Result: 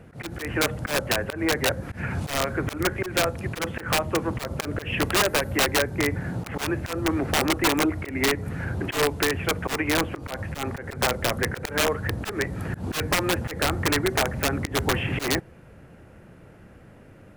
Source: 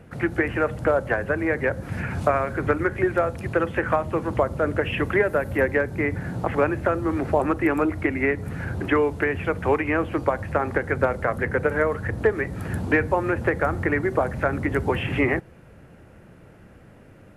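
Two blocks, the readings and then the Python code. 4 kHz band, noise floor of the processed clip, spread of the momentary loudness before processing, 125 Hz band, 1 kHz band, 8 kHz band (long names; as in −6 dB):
+15.0 dB, −49 dBFS, 4 LU, −1.5 dB, −2.0 dB, can't be measured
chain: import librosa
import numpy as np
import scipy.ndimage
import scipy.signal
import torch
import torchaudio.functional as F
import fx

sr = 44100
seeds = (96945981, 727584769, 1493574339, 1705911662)

y = (np.mod(10.0 ** (14.5 / 20.0) * x + 1.0, 2.0) - 1.0) / 10.0 ** (14.5 / 20.0)
y = fx.auto_swell(y, sr, attack_ms=125.0)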